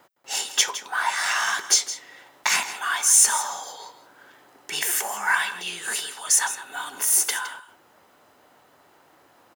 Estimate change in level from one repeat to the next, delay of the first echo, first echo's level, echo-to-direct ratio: no regular repeats, 163 ms, -13.5 dB, -13.5 dB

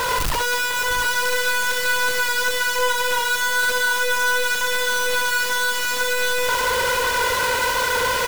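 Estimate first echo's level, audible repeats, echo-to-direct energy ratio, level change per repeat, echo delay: -7.5 dB, 2, -3.5 dB, no regular repeats, 60 ms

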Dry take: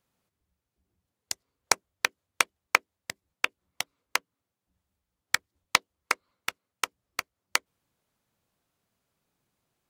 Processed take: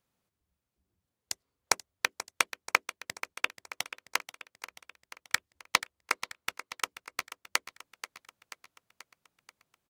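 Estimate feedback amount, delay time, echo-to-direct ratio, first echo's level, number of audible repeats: 58%, 484 ms, -11.5 dB, -13.5 dB, 5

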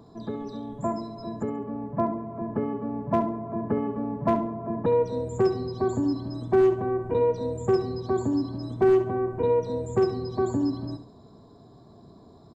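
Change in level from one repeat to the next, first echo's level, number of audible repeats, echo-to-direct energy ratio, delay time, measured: -10.5 dB, -11.0 dB, 3, -10.5 dB, 69 ms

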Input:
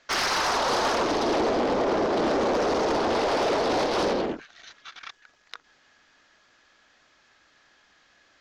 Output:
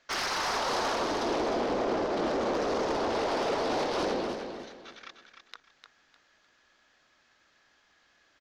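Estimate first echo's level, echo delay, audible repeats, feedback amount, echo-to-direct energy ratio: -7.5 dB, 303 ms, 3, 29%, -7.0 dB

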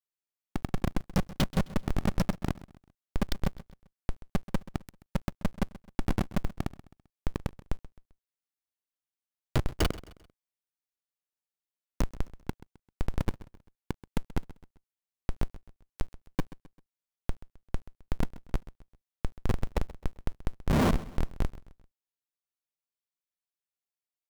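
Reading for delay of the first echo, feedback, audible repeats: 131 ms, 40%, 3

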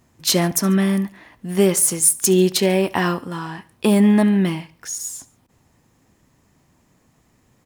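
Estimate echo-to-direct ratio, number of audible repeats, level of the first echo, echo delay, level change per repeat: -20.5 dB, 2, -21.5 dB, 71 ms, -4.5 dB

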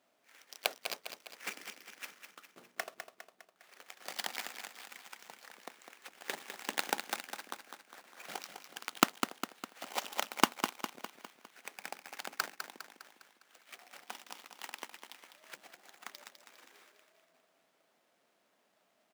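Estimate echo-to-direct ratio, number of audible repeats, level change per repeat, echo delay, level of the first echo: -6.5 dB, 5, -5.5 dB, 203 ms, -8.0 dB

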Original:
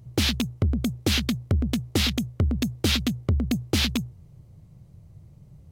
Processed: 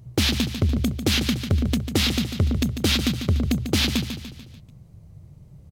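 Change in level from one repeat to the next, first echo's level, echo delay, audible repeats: -6.5 dB, -9.0 dB, 146 ms, 5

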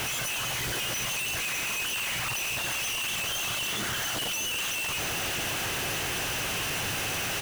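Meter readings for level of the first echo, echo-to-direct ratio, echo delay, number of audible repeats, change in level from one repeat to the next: -11.0 dB, -11.0 dB, 622 ms, 1, no regular repeats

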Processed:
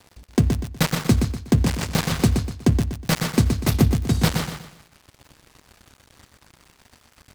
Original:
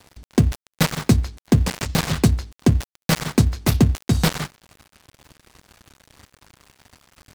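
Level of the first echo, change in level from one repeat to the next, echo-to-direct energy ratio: -6.0 dB, -9.5 dB, -5.5 dB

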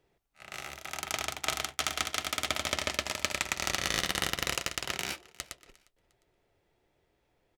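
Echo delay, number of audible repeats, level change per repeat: 354 ms, 2, -9.5 dB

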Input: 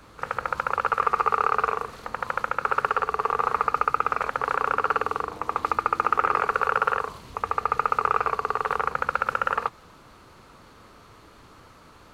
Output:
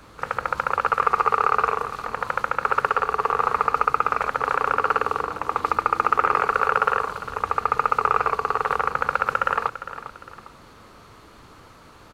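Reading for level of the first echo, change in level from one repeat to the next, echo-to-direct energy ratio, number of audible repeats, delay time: -13.0 dB, -8.0 dB, -12.5 dB, 2, 403 ms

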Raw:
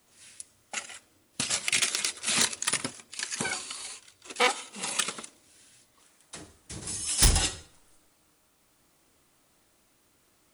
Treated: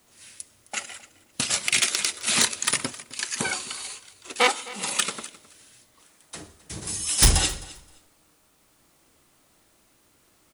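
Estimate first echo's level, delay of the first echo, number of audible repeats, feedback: -19.5 dB, 262 ms, 2, 17%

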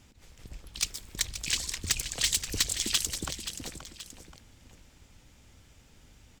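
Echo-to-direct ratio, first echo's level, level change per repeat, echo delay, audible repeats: -9.5 dB, -10.5 dB, -7.0 dB, 528 ms, 2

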